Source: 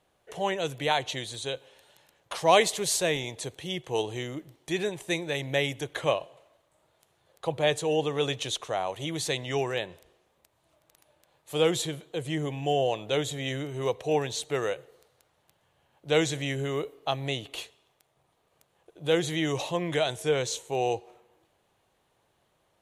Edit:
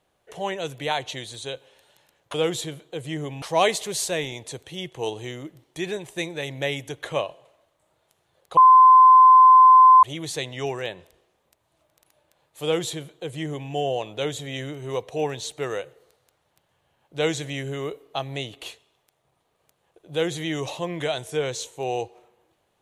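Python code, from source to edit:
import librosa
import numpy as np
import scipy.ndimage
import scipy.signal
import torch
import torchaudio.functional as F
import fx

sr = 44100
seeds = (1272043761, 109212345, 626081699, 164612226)

y = fx.edit(x, sr, fx.bleep(start_s=7.49, length_s=1.46, hz=1030.0, db=-8.0),
    fx.duplicate(start_s=11.55, length_s=1.08, to_s=2.34), tone=tone)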